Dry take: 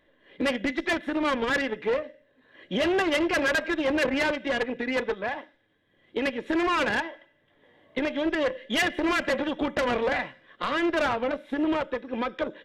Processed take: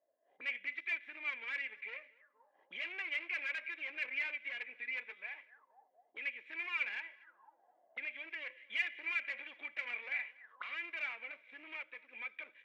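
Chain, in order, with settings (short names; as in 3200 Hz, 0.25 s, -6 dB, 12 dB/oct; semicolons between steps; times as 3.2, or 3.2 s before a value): sample leveller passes 1; tape echo 0.241 s, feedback 52%, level -21 dB, low-pass 2700 Hz; auto-wah 650–2300 Hz, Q 13, up, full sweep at -29.5 dBFS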